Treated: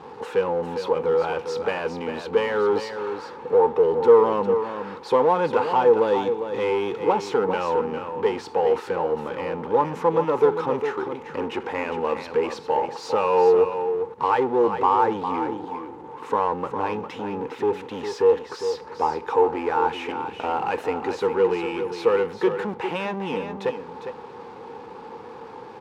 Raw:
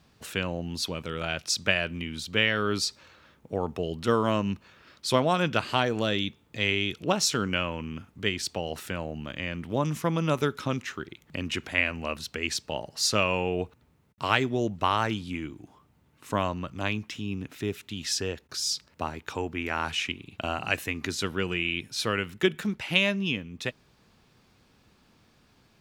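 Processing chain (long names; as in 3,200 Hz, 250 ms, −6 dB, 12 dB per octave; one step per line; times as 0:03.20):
power curve on the samples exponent 0.5
pair of resonant band-passes 640 Hz, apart 0.84 octaves
single-tap delay 404 ms −8.5 dB
level +6.5 dB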